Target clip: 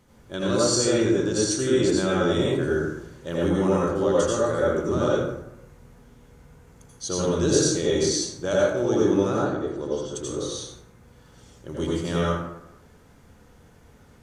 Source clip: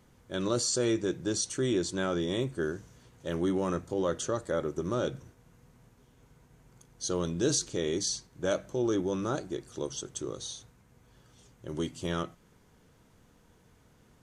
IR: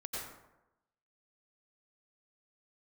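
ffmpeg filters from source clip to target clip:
-filter_complex "[0:a]asettb=1/sr,asplit=3[s0][s1][s2];[s0]atrim=end=9.344[s3];[s1]atrim=start=9.34:end=10.14,asetpts=PTS-STARTPTS,afade=t=in:d=0.004:c=qsin,afade=t=out:st=0.796:d=0.004:c=qsin,lowpass=f=1600:p=1[s4];[s2]atrim=start=10.136[s5];[s3][s4]acrossfade=d=0.004:c1=hsin:c2=qsin[s6];[s6][s5]acrossfade=d=0.004:c1=qsin:c2=hsin[s7];[1:a]atrim=start_sample=2205,asetrate=48510,aresample=44100[s8];[s7][s8]afir=irnorm=-1:irlink=0,volume=2.51"

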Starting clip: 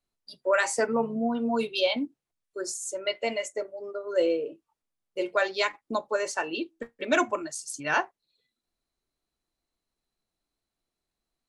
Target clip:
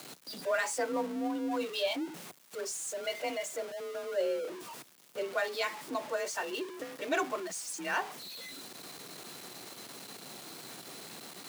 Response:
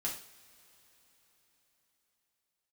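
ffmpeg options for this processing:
-af "aeval=exprs='val(0)+0.5*0.0316*sgn(val(0))':c=same,highpass=f=100:w=0.5412,highpass=f=100:w=1.3066,afreqshift=37,volume=0.376"

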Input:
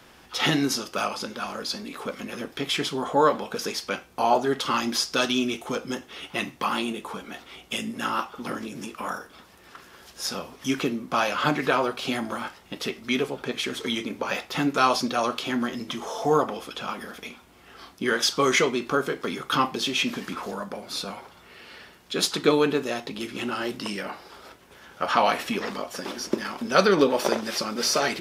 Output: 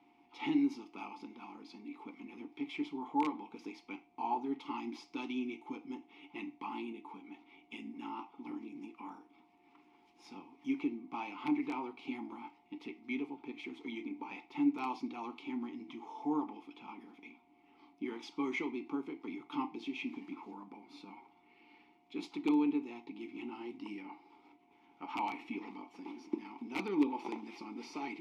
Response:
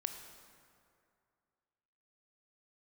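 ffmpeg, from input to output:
-filter_complex "[0:a]aeval=exprs='(mod(2.66*val(0)+1,2)-1)/2.66':c=same,aeval=exprs='val(0)+0.00355*sin(2*PI*710*n/s)':c=same,asplit=3[s0][s1][s2];[s0]bandpass=f=300:t=q:w=8,volume=1[s3];[s1]bandpass=f=870:t=q:w=8,volume=0.501[s4];[s2]bandpass=f=2240:t=q:w=8,volume=0.355[s5];[s3][s4][s5]amix=inputs=3:normalize=0,volume=0.75"

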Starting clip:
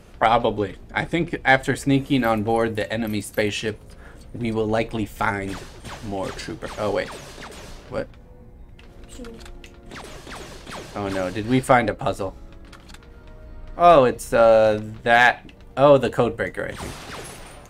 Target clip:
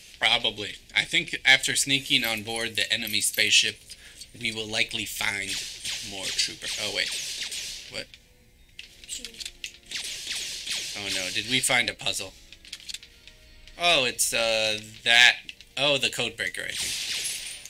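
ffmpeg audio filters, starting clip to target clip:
-af "highshelf=f=10000:g=-10,aexciter=amount=14.5:drive=7.1:freq=2000,volume=0.211"

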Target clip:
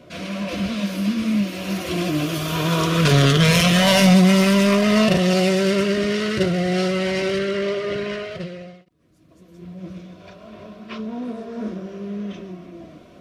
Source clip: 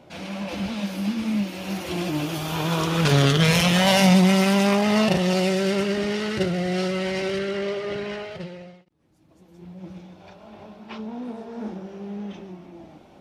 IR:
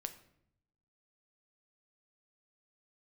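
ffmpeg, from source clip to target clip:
-af "acontrast=86,asuperstop=centerf=840:order=20:qfactor=4.7,volume=0.708"

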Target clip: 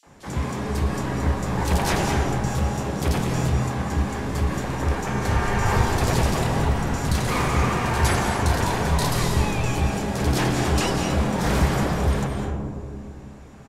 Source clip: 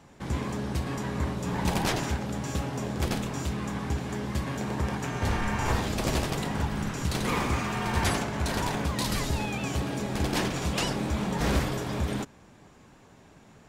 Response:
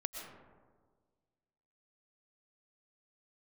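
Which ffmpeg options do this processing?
-filter_complex "[0:a]acrossover=split=280|3400[s0][s1][s2];[s1]adelay=30[s3];[s0]adelay=60[s4];[s4][s3][s2]amix=inputs=3:normalize=0[s5];[1:a]atrim=start_sample=2205,asetrate=26901,aresample=44100[s6];[s5][s6]afir=irnorm=-1:irlink=0,volume=1.58"

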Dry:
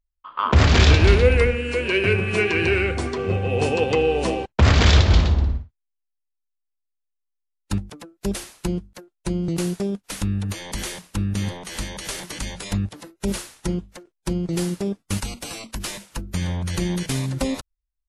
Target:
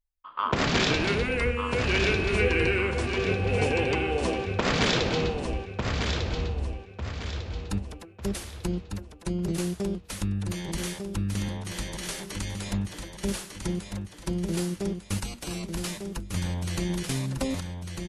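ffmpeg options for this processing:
-af "aecho=1:1:1199|2398|3597|4796|5995:0.501|0.19|0.0724|0.0275|0.0105,afftfilt=real='re*lt(hypot(re,im),1.26)':imag='im*lt(hypot(re,im),1.26)':win_size=1024:overlap=0.75,volume=0.562"

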